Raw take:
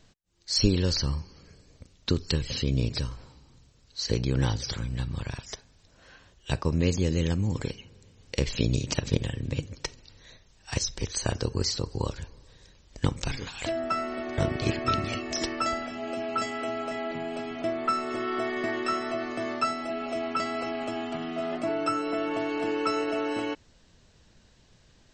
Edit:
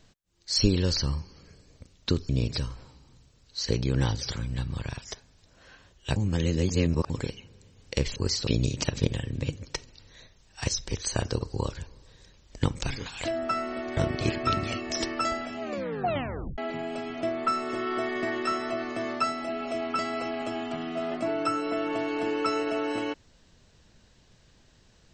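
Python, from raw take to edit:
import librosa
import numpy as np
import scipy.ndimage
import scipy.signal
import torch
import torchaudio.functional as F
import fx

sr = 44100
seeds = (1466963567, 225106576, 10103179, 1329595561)

y = fx.edit(x, sr, fx.cut(start_s=2.29, length_s=0.41),
    fx.reverse_span(start_s=6.57, length_s=0.94),
    fx.move(start_s=11.51, length_s=0.31, to_s=8.57),
    fx.tape_stop(start_s=16.03, length_s=0.96), tone=tone)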